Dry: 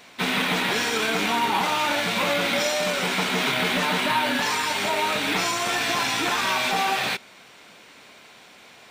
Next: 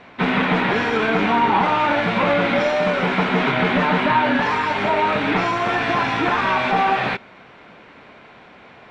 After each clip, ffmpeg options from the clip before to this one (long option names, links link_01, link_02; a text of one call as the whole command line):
ffmpeg -i in.wav -af "lowpass=1900,lowshelf=frequency=130:gain=7,volume=6.5dB" out.wav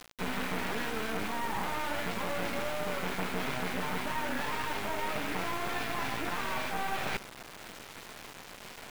ffmpeg -i in.wav -af "areverse,acompressor=threshold=-28dB:ratio=6,areverse,acrusher=bits=4:dc=4:mix=0:aa=0.000001" out.wav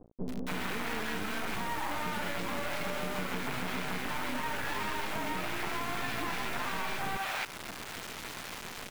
ffmpeg -i in.wav -filter_complex "[0:a]acrossover=split=560[link_01][link_02];[link_02]adelay=280[link_03];[link_01][link_03]amix=inputs=2:normalize=0,acompressor=threshold=-36dB:ratio=6,volume=5.5dB" out.wav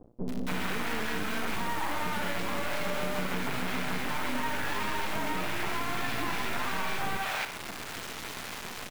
ffmpeg -i in.wav -af "aecho=1:1:60|120|180|240|300|360:0.282|0.149|0.0792|0.042|0.0222|0.0118,volume=2dB" out.wav